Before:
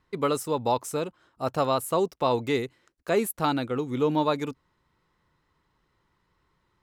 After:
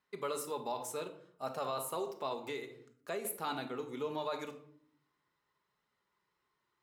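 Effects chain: treble shelf 11 kHz +4.5 dB; reverberation RT60 0.60 s, pre-delay 5 ms, DRR 5.5 dB; 2.33–3.25 s: compression 4:1, threshold -25 dBFS, peak gain reduction 9 dB; flange 0.68 Hz, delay 1.3 ms, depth 1.6 ms, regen -72%; peak limiter -20.5 dBFS, peak gain reduction 6 dB; high-pass 490 Hz 6 dB/octave; trim -4.5 dB

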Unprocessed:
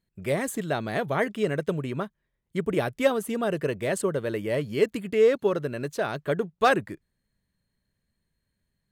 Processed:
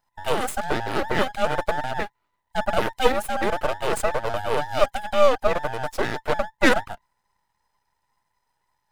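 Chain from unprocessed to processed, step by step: every band turned upside down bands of 1 kHz; half-wave rectifier; trim +7 dB

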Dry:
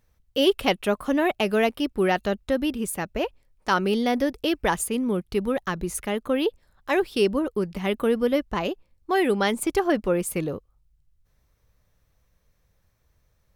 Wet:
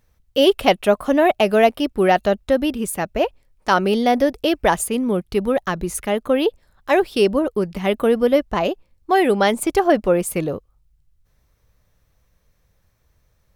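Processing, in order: dynamic bell 660 Hz, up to +7 dB, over -38 dBFS, Q 2.4; trim +4 dB

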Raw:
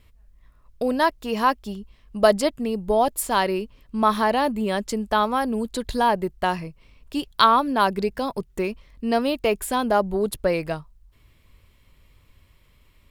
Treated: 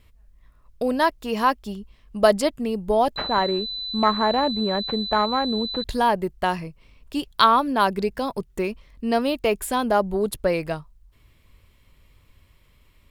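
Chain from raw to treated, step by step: 3.16–5.84 s: class-D stage that switches slowly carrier 4 kHz

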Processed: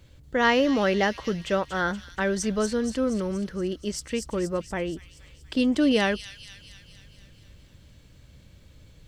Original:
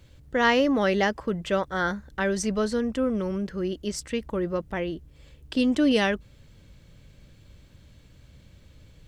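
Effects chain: feedback echo behind a high-pass 237 ms, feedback 61%, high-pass 4.3 kHz, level -4 dB

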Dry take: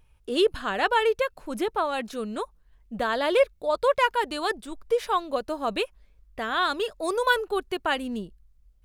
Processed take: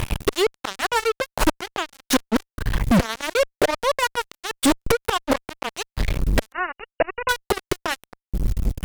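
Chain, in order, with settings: inverted gate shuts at -25 dBFS, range -36 dB; fuzz box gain 60 dB, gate -57 dBFS; 6.52–7.29 s: brick-wall FIR low-pass 2.9 kHz

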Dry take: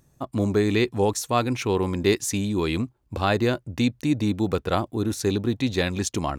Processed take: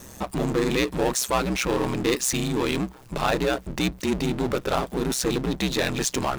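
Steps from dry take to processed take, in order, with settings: bass shelf 240 Hz -11.5 dB; power-law waveshaper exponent 0.5; ring modulator 64 Hz; trim -2.5 dB

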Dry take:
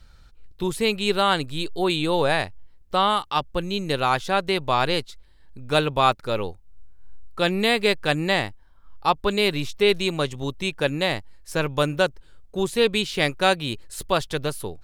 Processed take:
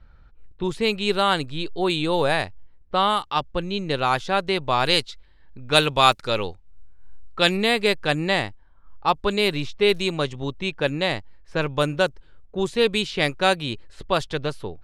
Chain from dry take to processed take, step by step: level-controlled noise filter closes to 1.8 kHz, open at -15.5 dBFS; 4.85–7.57 s: treble shelf 2.1 kHz +10 dB

